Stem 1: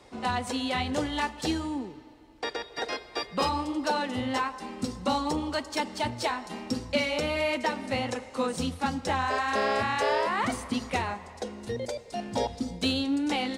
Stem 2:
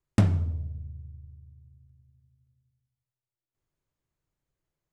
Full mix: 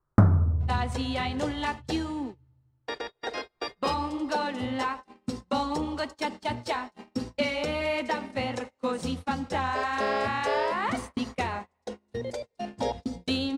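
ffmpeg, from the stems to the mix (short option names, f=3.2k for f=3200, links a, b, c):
-filter_complex "[0:a]agate=range=-29dB:threshold=-35dB:ratio=16:detection=peak,adelay=450,volume=-0.5dB[a];[1:a]highshelf=f=1.9k:t=q:w=3:g=-13.5,acontrast=27,alimiter=limit=-8dB:level=0:latency=1:release=492,volume=1.5dB[b];[a][b]amix=inputs=2:normalize=0,highshelf=f=4.8k:g=-5.5"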